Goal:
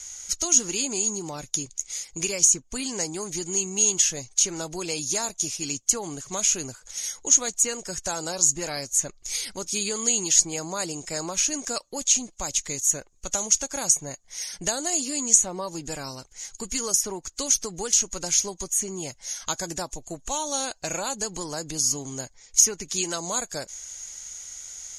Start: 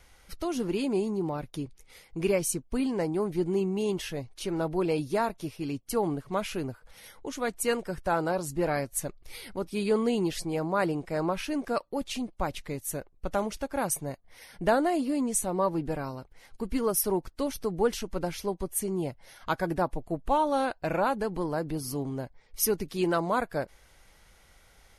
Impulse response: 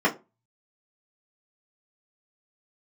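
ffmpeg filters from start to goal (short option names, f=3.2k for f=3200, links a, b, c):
-filter_complex "[0:a]acrossover=split=1100|2900[a][b][c];[a]acompressor=threshold=-30dB:ratio=4[d];[b]acompressor=threshold=-46dB:ratio=4[e];[c]acompressor=threshold=-45dB:ratio=4[f];[d][e][f]amix=inputs=3:normalize=0,lowpass=f=6.7k:t=q:w=15,crystalizer=i=7:c=0,volume=-2dB"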